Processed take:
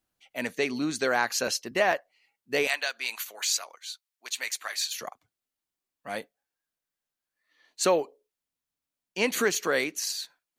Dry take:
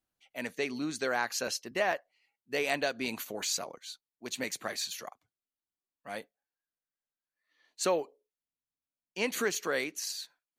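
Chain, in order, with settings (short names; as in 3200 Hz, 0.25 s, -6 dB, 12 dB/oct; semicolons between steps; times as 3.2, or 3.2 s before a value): 2.67–5.01 HPF 1200 Hz 12 dB/oct; gain +5.5 dB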